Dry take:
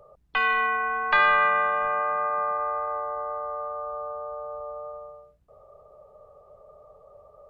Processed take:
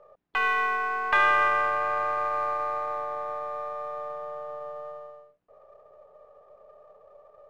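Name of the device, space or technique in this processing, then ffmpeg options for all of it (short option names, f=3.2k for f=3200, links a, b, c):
crystal radio: -af "highpass=280,lowpass=2.9k,aeval=exprs='if(lt(val(0),0),0.708*val(0),val(0))':c=same"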